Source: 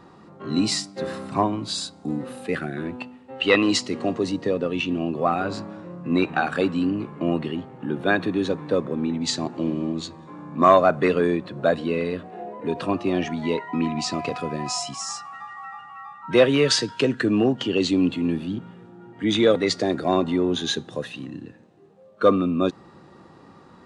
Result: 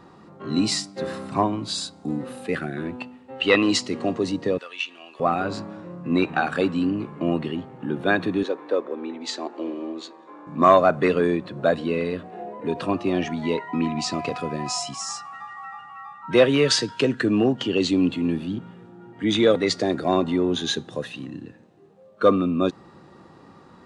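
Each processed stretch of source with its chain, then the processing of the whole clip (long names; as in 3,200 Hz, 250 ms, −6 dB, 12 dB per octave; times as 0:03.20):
0:04.58–0:05.20: high-pass filter 1,400 Hz + one half of a high-frequency compander encoder only
0:08.43–0:10.47: high-pass filter 330 Hz 24 dB per octave + high-shelf EQ 4,700 Hz −10.5 dB
whole clip: no processing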